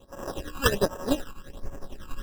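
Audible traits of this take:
a buzz of ramps at a fixed pitch in blocks of 16 samples
tremolo triangle 11 Hz, depth 80%
aliases and images of a low sample rate 2,200 Hz, jitter 0%
phaser sweep stages 12, 1.3 Hz, lowest notch 590–4,000 Hz

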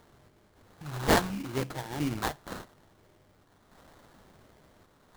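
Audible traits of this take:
sample-and-hold tremolo
phaser sweep stages 2, 0.71 Hz, lowest notch 250–1,500 Hz
aliases and images of a low sample rate 2,600 Hz, jitter 20%

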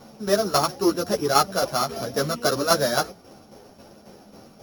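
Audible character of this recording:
a buzz of ramps at a fixed pitch in blocks of 8 samples
tremolo saw down 3.7 Hz, depth 60%
a shimmering, thickened sound

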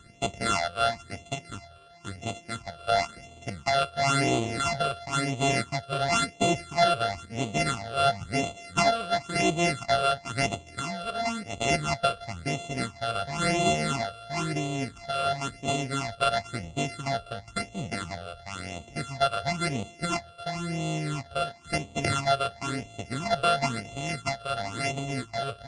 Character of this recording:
a buzz of ramps at a fixed pitch in blocks of 64 samples
phaser sweep stages 8, 0.97 Hz, lowest notch 260–1,600 Hz
MP3

